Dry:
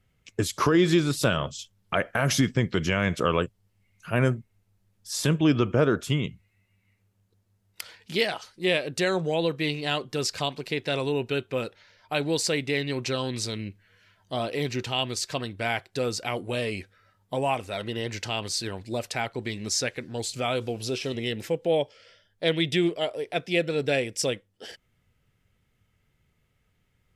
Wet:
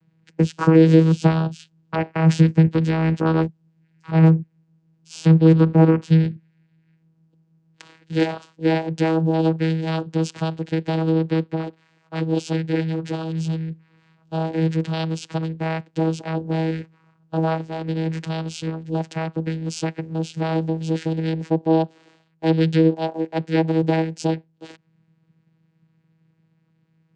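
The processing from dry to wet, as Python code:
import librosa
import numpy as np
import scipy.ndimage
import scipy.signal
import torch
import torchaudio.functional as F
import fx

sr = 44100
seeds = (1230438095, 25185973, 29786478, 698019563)

y = fx.chorus_voices(x, sr, voices=6, hz=1.4, base_ms=10, depth_ms=3.0, mix_pct=60, at=(11.54, 13.69), fade=0.02)
y = fx.vocoder(y, sr, bands=8, carrier='saw', carrier_hz=161.0)
y = y * 10.0 ** (8.0 / 20.0)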